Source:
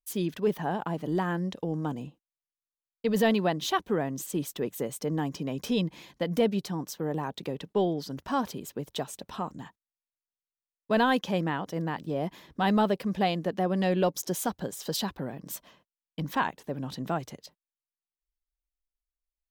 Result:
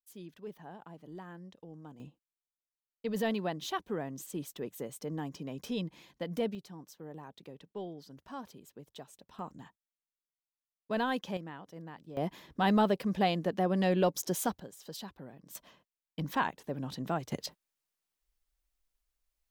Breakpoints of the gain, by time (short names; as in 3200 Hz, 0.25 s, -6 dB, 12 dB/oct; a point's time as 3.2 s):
-18 dB
from 2 s -8 dB
from 6.55 s -15 dB
from 9.39 s -8 dB
from 11.37 s -15 dB
from 12.17 s -2 dB
from 14.6 s -13 dB
from 15.55 s -3 dB
from 17.32 s +8 dB